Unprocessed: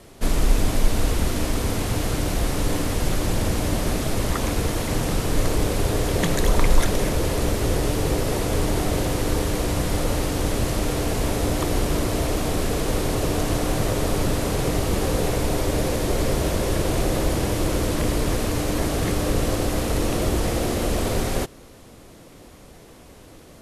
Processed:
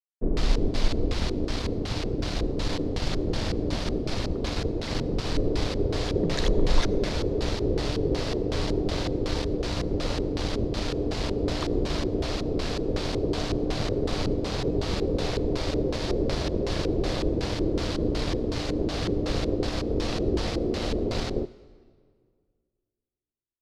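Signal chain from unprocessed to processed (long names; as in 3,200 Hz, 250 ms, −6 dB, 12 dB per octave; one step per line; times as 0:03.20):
dead-zone distortion −33 dBFS
auto-filter low-pass square 2.7 Hz 410–4,500 Hz
on a send: convolution reverb RT60 1.9 s, pre-delay 67 ms, DRR 20 dB
on the sum: level −4 dB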